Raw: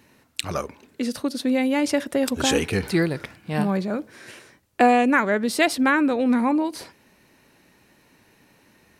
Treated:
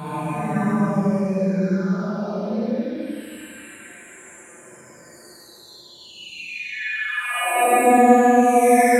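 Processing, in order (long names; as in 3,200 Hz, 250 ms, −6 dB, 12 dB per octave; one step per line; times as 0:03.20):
every frequency bin delayed by itself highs early, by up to 790 ms
extreme stretch with random phases 6×, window 0.10 s, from 0:03.48
mains-hum notches 50/100/150/200 Hz
convolution reverb RT60 1.7 s, pre-delay 32 ms, DRR −4 dB
level −2 dB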